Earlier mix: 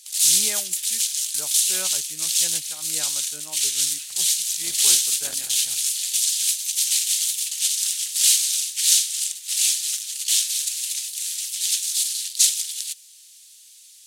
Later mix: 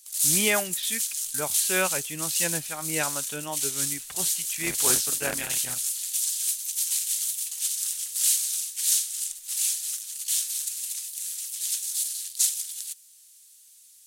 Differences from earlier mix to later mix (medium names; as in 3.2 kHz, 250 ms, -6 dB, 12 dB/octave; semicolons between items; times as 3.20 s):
speech +11.0 dB; background: remove frequency weighting D